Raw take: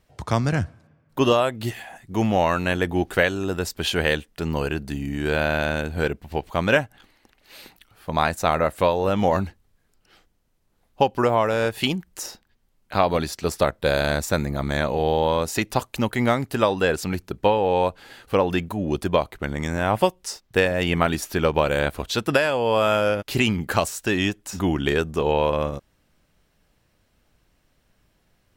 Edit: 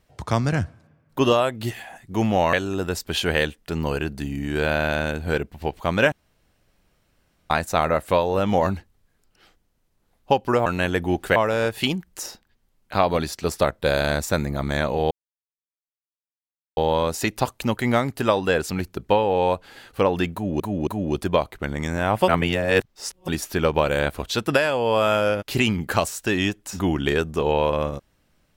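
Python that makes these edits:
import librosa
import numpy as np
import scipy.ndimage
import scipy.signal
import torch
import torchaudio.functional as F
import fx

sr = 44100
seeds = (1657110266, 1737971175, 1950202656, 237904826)

y = fx.edit(x, sr, fx.move(start_s=2.53, length_s=0.7, to_s=11.36),
    fx.room_tone_fill(start_s=6.82, length_s=1.38),
    fx.insert_silence(at_s=15.11, length_s=1.66),
    fx.repeat(start_s=18.67, length_s=0.27, count=3),
    fx.reverse_span(start_s=20.08, length_s=1.0), tone=tone)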